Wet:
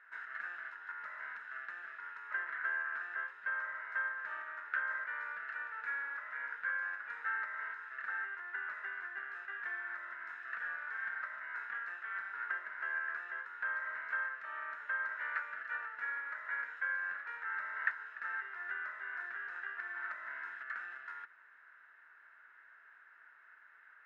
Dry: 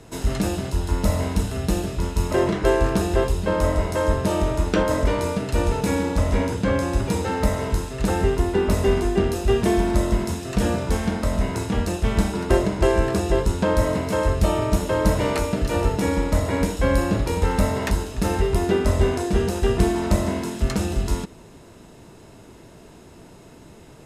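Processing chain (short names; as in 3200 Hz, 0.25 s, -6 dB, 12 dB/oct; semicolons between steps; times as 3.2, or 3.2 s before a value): compressor 2.5:1, threshold -23 dBFS, peak gain reduction 7.5 dB; Butterworth band-pass 1600 Hz, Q 3.5; gain +4 dB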